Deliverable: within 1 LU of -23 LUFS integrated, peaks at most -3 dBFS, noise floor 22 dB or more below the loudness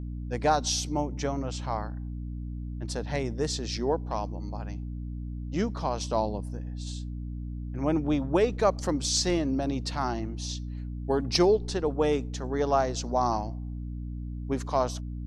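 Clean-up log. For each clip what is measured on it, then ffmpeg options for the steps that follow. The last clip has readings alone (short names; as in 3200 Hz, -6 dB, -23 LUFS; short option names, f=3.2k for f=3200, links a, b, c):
hum 60 Hz; harmonics up to 300 Hz; hum level -33 dBFS; loudness -29.5 LUFS; peak -10.0 dBFS; loudness target -23.0 LUFS
-> -af "bandreject=f=60:t=h:w=4,bandreject=f=120:t=h:w=4,bandreject=f=180:t=h:w=4,bandreject=f=240:t=h:w=4,bandreject=f=300:t=h:w=4"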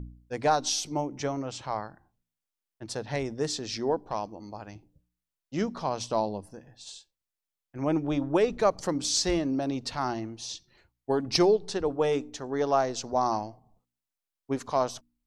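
hum none; loudness -29.0 LUFS; peak -10.5 dBFS; loudness target -23.0 LUFS
-> -af "volume=6dB"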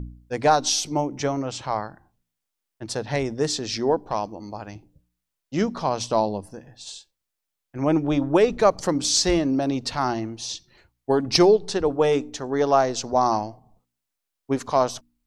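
loudness -23.0 LUFS; peak -4.5 dBFS; noise floor -83 dBFS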